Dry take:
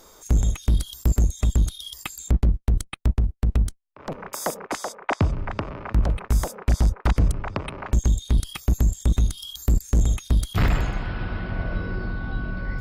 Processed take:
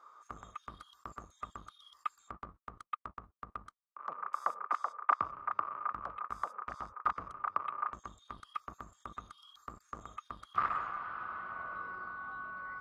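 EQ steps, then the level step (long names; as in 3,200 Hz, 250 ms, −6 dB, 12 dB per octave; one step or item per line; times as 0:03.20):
resonant band-pass 1,200 Hz, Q 12
+8.0 dB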